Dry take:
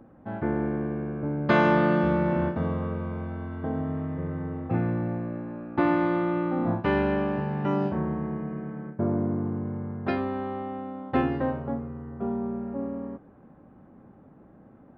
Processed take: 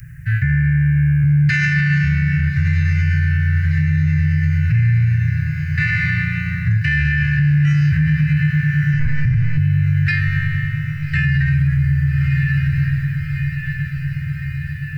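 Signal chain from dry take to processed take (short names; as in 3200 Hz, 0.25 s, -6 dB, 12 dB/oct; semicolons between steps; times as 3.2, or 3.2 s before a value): Chebyshev band-stop 140–1700 Hz, order 5; 8.93–9.58 monotone LPC vocoder at 8 kHz 250 Hz; high shelf 3000 Hz +12 dB; fixed phaser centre 1400 Hz, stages 4; diffused feedback echo 1.275 s, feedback 63%, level -12.5 dB; vocal rider within 4 dB 2 s; thirty-one-band EQ 160 Hz +11 dB, 250 Hz -10 dB, 500 Hz +10 dB, 3150 Hz +6 dB; maximiser +29.5 dB; gain -8 dB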